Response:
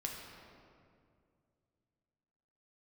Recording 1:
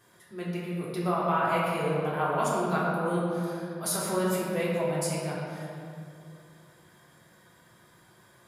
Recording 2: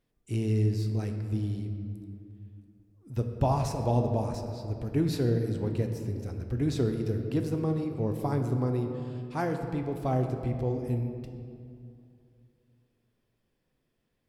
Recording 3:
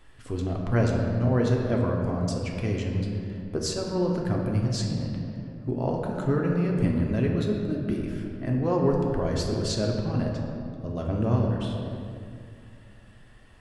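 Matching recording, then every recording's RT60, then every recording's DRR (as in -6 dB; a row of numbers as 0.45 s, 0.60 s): 3; 2.3 s, 2.3 s, 2.3 s; -7.0 dB, 4.0 dB, -1.0 dB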